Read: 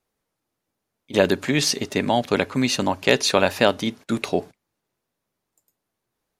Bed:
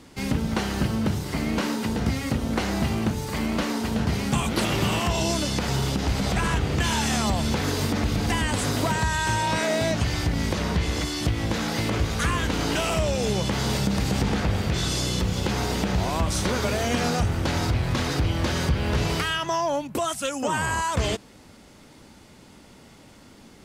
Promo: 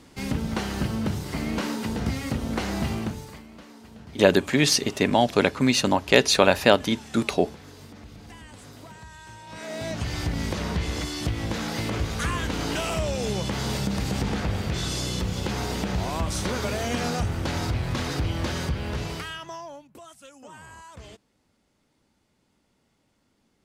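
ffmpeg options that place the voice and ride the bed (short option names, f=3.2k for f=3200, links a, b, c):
-filter_complex "[0:a]adelay=3050,volume=0.5dB[a];[1:a]volume=15dB,afade=t=out:st=2.91:d=0.52:silence=0.125893,afade=t=in:st=9.46:d=0.78:silence=0.133352,afade=t=out:st=18.42:d=1.44:silence=0.141254[b];[a][b]amix=inputs=2:normalize=0"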